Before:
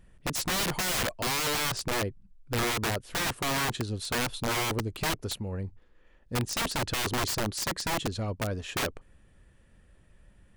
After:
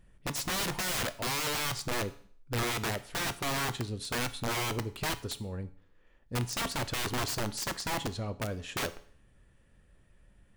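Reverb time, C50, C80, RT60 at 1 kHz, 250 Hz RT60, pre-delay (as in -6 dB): 0.50 s, 17.0 dB, 20.5 dB, 0.50 s, 0.55 s, 7 ms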